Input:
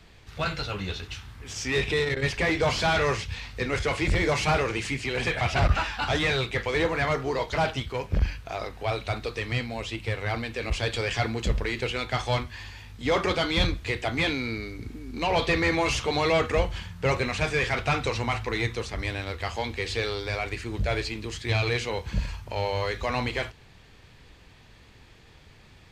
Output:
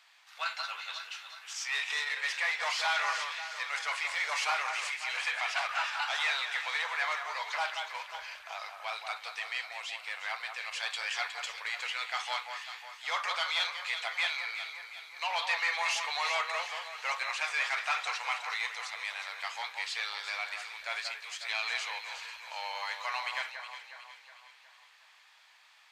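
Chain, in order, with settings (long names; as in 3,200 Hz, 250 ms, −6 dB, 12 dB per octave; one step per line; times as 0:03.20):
inverse Chebyshev high-pass filter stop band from 330 Hz, stop band 50 dB
delay that swaps between a low-pass and a high-pass 182 ms, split 2,000 Hz, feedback 70%, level −6 dB
level −3.5 dB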